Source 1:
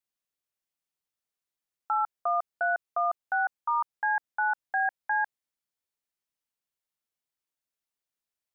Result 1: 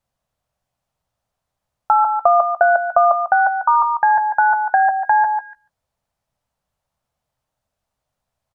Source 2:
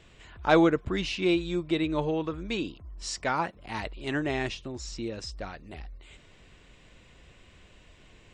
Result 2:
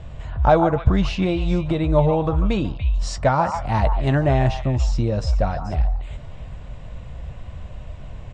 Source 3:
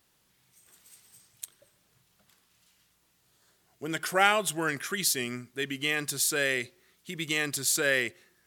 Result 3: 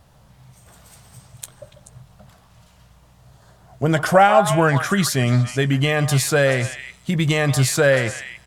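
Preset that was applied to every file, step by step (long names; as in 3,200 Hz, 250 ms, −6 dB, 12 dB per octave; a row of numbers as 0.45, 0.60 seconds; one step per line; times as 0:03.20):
high-shelf EQ 12,000 Hz −10 dB
double-tracking delay 15 ms −13 dB
downward compressor 3 to 1, threshold −29 dBFS
drawn EQ curve 120 Hz 0 dB, 370 Hz −18 dB, 610 Hz −5 dB, 2,200 Hz −20 dB
echo through a band-pass that steps 144 ms, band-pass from 1,000 Hz, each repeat 1.4 octaves, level −5 dB
normalise the peak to −2 dBFS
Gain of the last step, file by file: +27.5, +23.0, +28.0 decibels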